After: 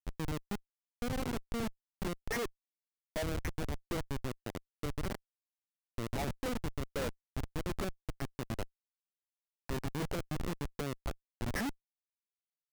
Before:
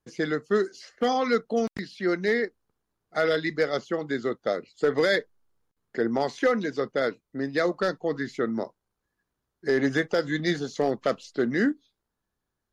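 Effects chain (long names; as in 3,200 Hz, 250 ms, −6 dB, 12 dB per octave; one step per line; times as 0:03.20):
time-frequency cells dropped at random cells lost 22%
0:08.43–0:09.77: high-pass filter 330 Hz 12 dB per octave
brickwall limiter −25 dBFS, peak gain reduction 11.5 dB
log-companded quantiser 6 bits
square-wave tremolo 1.3 Hz, depth 65%, duty 20%
comparator with hysteresis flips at −35.5 dBFS
level +7 dB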